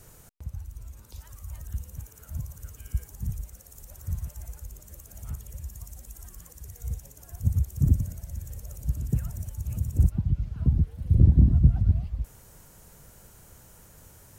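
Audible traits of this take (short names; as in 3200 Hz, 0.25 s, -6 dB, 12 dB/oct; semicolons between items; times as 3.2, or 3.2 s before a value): noise floor -53 dBFS; spectral tilt -16.5 dB/oct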